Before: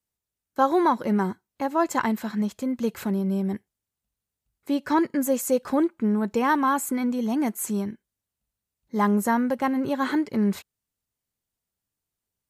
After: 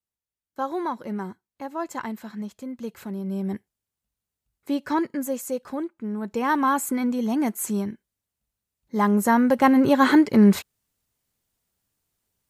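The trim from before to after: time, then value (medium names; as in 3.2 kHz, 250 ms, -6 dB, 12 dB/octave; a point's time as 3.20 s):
3.08 s -7.5 dB
3.52 s -0.5 dB
4.72 s -0.5 dB
5.98 s -9 dB
6.62 s +1 dB
9.09 s +1 dB
9.71 s +8 dB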